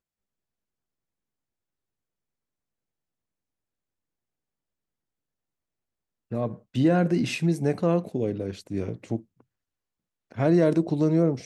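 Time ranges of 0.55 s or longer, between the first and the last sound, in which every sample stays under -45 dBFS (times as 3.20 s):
9.40–10.31 s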